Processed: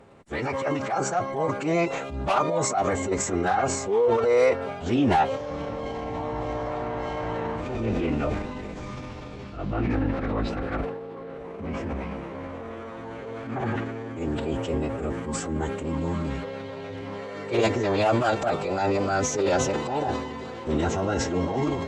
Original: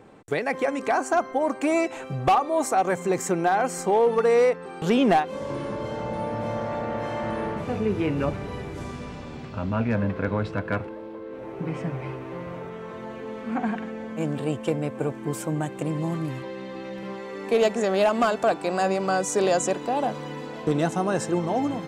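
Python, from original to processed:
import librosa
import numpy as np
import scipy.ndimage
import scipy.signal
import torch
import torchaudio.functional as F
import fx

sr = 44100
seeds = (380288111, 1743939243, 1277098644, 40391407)

y = fx.transient(x, sr, attack_db=-7, sustain_db=8)
y = fx.pitch_keep_formants(y, sr, semitones=-11.5)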